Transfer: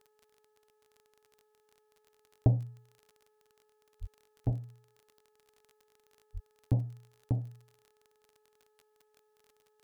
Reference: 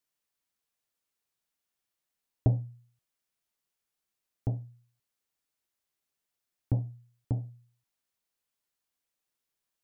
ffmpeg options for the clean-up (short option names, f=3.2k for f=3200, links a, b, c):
-filter_complex "[0:a]adeclick=t=4,bandreject=f=426.8:t=h:w=4,bandreject=f=853.6:t=h:w=4,bandreject=f=1.2804k:t=h:w=4,bandreject=f=1.7072k:t=h:w=4,asplit=3[a][b][c];[a]afade=t=out:st=4:d=0.02[d];[b]highpass=f=140:w=0.5412,highpass=f=140:w=1.3066,afade=t=in:st=4:d=0.02,afade=t=out:st=4.12:d=0.02[e];[c]afade=t=in:st=4.12:d=0.02[f];[d][e][f]amix=inputs=3:normalize=0,asplit=3[g][h][i];[g]afade=t=out:st=4.45:d=0.02[j];[h]highpass=f=140:w=0.5412,highpass=f=140:w=1.3066,afade=t=in:st=4.45:d=0.02,afade=t=out:st=4.57:d=0.02[k];[i]afade=t=in:st=4.57:d=0.02[l];[j][k][l]amix=inputs=3:normalize=0,asplit=3[m][n][o];[m]afade=t=out:st=6.33:d=0.02[p];[n]highpass=f=140:w=0.5412,highpass=f=140:w=1.3066,afade=t=in:st=6.33:d=0.02,afade=t=out:st=6.45:d=0.02[q];[o]afade=t=in:st=6.45:d=0.02[r];[p][q][r]amix=inputs=3:normalize=0"